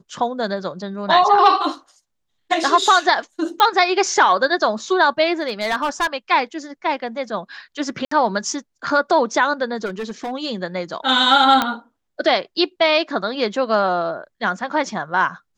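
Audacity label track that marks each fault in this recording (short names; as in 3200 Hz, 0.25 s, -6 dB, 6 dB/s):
3.600000	3.600000	pop -4 dBFS
5.420000	6.070000	clipped -15.5 dBFS
8.050000	8.110000	gap 64 ms
9.850000	10.320000	clipped -22.5 dBFS
11.620000	11.620000	pop -4 dBFS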